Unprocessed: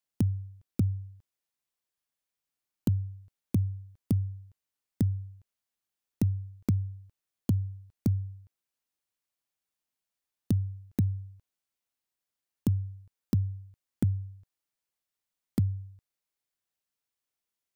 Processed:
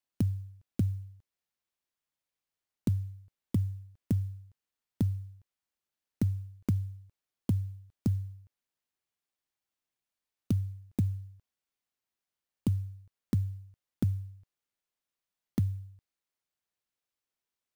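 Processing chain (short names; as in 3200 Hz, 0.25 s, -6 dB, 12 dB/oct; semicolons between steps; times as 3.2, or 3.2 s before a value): clock jitter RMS 0.026 ms; gain -2 dB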